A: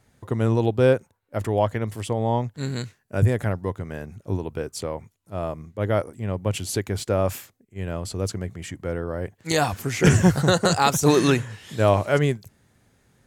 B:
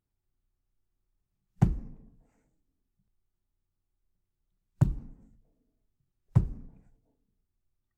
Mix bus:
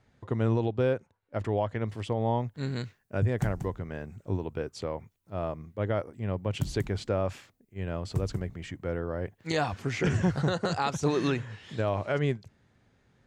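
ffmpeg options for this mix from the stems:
-filter_complex "[0:a]lowpass=4.5k,volume=-4dB[a];[1:a]crystalizer=i=4:c=0,adelay=1800,volume=-6.5dB,asplit=2[b][c];[c]volume=-7.5dB,aecho=0:1:187:1[d];[a][b][d]amix=inputs=3:normalize=0,alimiter=limit=-17dB:level=0:latency=1:release=208"

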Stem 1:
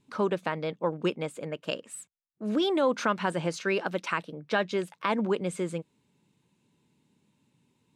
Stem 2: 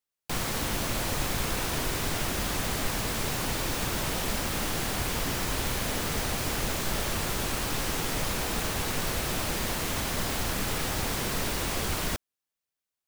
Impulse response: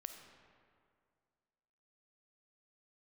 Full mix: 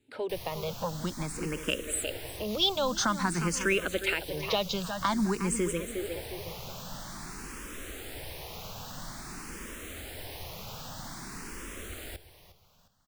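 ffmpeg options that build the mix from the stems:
-filter_complex "[0:a]dynaudnorm=f=150:g=17:m=11.5dB,volume=1.5dB,asplit=2[a][b];[b]volume=-12dB[c];[1:a]volume=-9dB,asplit=2[d][e];[e]volume=-14.5dB[f];[c][f]amix=inputs=2:normalize=0,aecho=0:1:358|716|1074|1432|1790:1|0.38|0.144|0.0549|0.0209[g];[a][d][g]amix=inputs=3:normalize=0,acrossover=split=120|3000[h][i][j];[i]acompressor=threshold=-30dB:ratio=2.5[k];[h][k][j]amix=inputs=3:normalize=0,asplit=2[l][m];[m]afreqshift=0.5[n];[l][n]amix=inputs=2:normalize=1"

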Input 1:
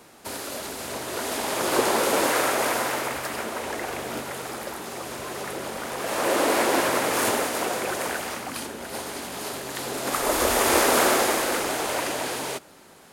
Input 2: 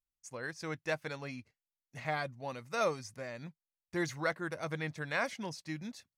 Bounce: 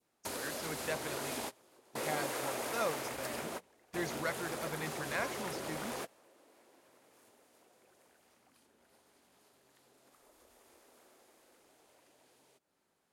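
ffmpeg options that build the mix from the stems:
-filter_complex "[0:a]adynamicequalizer=threshold=0.0158:dfrequency=1400:dqfactor=0.78:tfrequency=1400:tqfactor=0.78:attack=5:release=100:ratio=0.375:range=2:mode=cutabove:tftype=bell,acompressor=threshold=-39dB:ratio=3,volume=-1dB[a];[1:a]highpass=120,bandreject=f=60:t=h:w=6,bandreject=f=120:t=h:w=6,bandreject=f=180:t=h:w=6,volume=-3.5dB,asplit=2[b][c];[c]apad=whole_len=578854[d];[a][d]sidechaingate=range=-27dB:threshold=-58dB:ratio=16:detection=peak[e];[e][b]amix=inputs=2:normalize=0"

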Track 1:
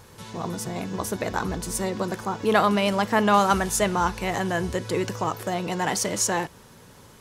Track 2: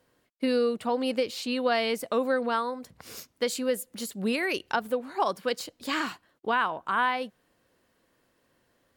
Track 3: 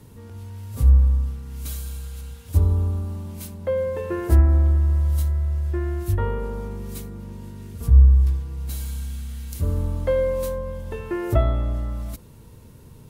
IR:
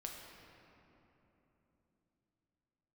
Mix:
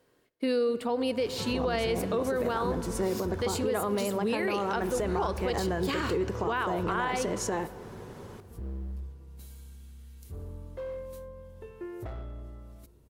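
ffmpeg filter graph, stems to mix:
-filter_complex "[0:a]highshelf=f=2.6k:g=-11.5,acompressor=threshold=-35dB:ratio=3,adelay=1200,volume=2.5dB,asplit=2[a][b];[b]volume=-11dB[c];[1:a]volume=-2dB,asplit=2[d][e];[e]volume=-9.5dB[f];[2:a]asoftclip=type=hard:threshold=-18dB,adelay=700,volume=-18dB,asplit=2[g][h];[h]volume=-14.5dB[i];[3:a]atrim=start_sample=2205[j];[c][f][i]amix=inputs=3:normalize=0[k];[k][j]afir=irnorm=-1:irlink=0[l];[a][d][g][l]amix=inputs=4:normalize=0,equalizer=f=400:w=3.2:g=7.5,alimiter=limit=-20.5dB:level=0:latency=1:release=42"

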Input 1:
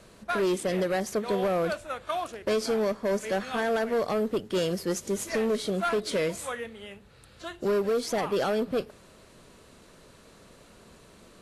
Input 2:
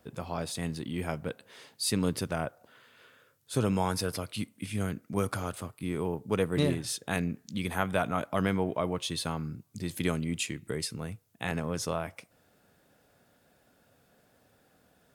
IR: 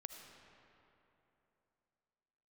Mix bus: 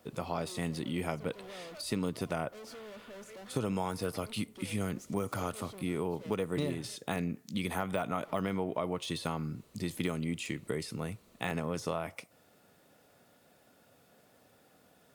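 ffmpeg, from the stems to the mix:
-filter_complex "[0:a]asoftclip=type=tanh:threshold=-35.5dB,adelay=50,volume=-10.5dB,asplit=3[a][b][c];[a]atrim=end=6.96,asetpts=PTS-STARTPTS,afade=t=out:st=6.956:d=0.004:c=hsin[d];[b]atrim=start=6.96:end=8.23,asetpts=PTS-STARTPTS,volume=0[e];[c]atrim=start=8.23,asetpts=PTS-STARTPTS,afade=t=in:d=0.004:c=hsin[f];[d][e][f]concat=n=3:v=0:a=1[g];[1:a]highpass=f=140:p=1,deesser=0.95,volume=2.5dB,asplit=2[h][i];[i]apad=whole_len=505619[j];[g][j]sidechaincompress=threshold=-39dB:ratio=8:attack=16:release=111[k];[k][h]amix=inputs=2:normalize=0,bandreject=f=1.6k:w=10,acompressor=threshold=-29dB:ratio=5"

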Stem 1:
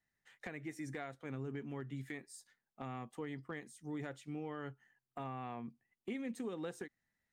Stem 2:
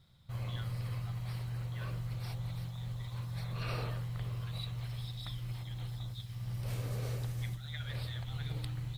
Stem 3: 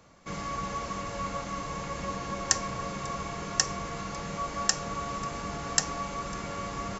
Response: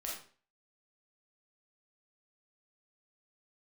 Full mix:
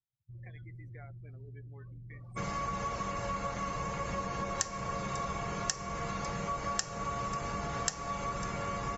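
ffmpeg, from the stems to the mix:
-filter_complex "[0:a]bass=f=250:g=-10,treble=f=4k:g=0,aeval=exprs='sgn(val(0))*max(abs(val(0))-0.00141,0)':c=same,highshelf=f=2.4k:g=7.5,volume=-7dB,asplit=3[a][b][c];[b]volume=-13dB[d];[c]volume=-16.5dB[e];[1:a]asoftclip=type=tanh:threshold=-38.5dB,volume=-5.5dB,asplit=2[f][g];[g]volume=-12.5dB[h];[2:a]adelay=2100,volume=3dB[i];[3:a]atrim=start_sample=2205[j];[d][h]amix=inputs=2:normalize=0[k];[k][j]afir=irnorm=-1:irlink=0[l];[e]aecho=0:1:285:1[m];[a][f][i][l][m]amix=inputs=5:normalize=0,afftdn=nr=34:nf=-46,equalizer=f=280:t=o:w=0.57:g=-5.5,acompressor=threshold=-33dB:ratio=3"

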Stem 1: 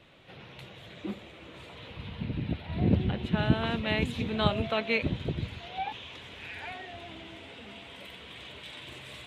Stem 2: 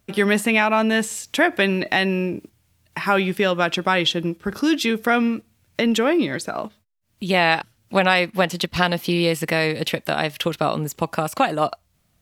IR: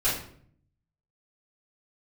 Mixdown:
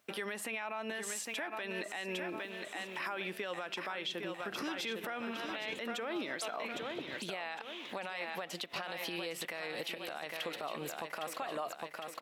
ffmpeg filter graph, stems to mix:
-filter_complex "[0:a]adelay=1700,volume=-1.5dB[a];[1:a]bass=f=250:g=6,treble=f=4k:g=-4,acompressor=threshold=-22dB:ratio=6,volume=-1.5dB,asplit=3[b][c][d];[c]volume=-9.5dB[e];[d]apad=whole_len=483765[f];[a][f]sidechaincompress=threshold=-37dB:ratio=8:attack=9.3:release=168[g];[e]aecho=0:1:808|1616|2424|3232|4040|4848:1|0.43|0.185|0.0795|0.0342|0.0147[h];[g][b][h]amix=inputs=3:normalize=0,highpass=530,alimiter=level_in=4.5dB:limit=-24dB:level=0:latency=1:release=103,volume=-4.5dB"

